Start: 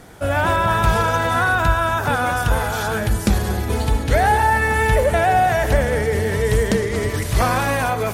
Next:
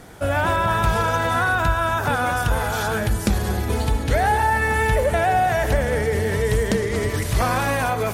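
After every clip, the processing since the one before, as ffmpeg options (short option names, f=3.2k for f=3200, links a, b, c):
-af "acompressor=threshold=-20dB:ratio=1.5"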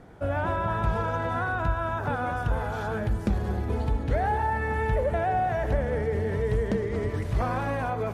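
-af "lowpass=f=1k:p=1,volume=-5dB"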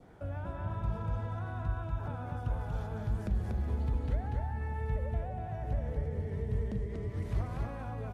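-filter_complex "[0:a]adynamicequalizer=threshold=0.00501:dfrequency=1600:dqfactor=2.4:tfrequency=1600:tqfactor=2.4:attack=5:release=100:ratio=0.375:range=2.5:mode=cutabove:tftype=bell,acrossover=split=200[a][b];[b]acompressor=threshold=-37dB:ratio=10[c];[a][c]amix=inputs=2:normalize=0,aecho=1:1:239:0.708,volume=-6.5dB"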